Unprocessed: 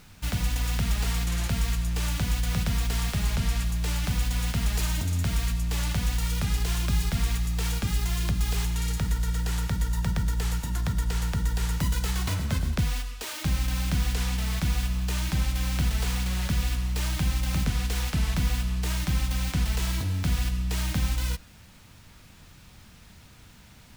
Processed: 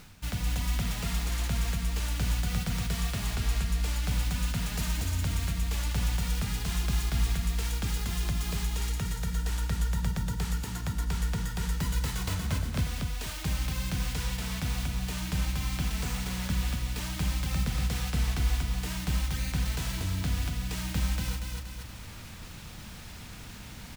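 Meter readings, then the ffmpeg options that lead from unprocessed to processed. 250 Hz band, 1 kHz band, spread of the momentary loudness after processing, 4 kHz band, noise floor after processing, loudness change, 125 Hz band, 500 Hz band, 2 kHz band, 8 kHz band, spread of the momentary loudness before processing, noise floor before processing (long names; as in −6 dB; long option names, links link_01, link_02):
−3.0 dB, −2.5 dB, 5 LU, −2.5 dB, −44 dBFS, −3.5 dB, −3.5 dB, −2.5 dB, −2.5 dB, −2.5 dB, 2 LU, −51 dBFS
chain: -af "aecho=1:1:237|474|711|948:0.668|0.214|0.0684|0.0219,areverse,acompressor=mode=upward:threshold=-28dB:ratio=2.5,areverse,volume=-4.5dB"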